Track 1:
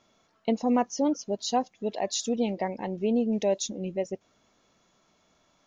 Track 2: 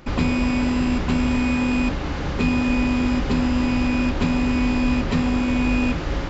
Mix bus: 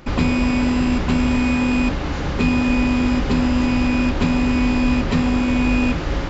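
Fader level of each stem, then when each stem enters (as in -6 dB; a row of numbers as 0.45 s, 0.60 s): -19.5 dB, +2.5 dB; 0.00 s, 0.00 s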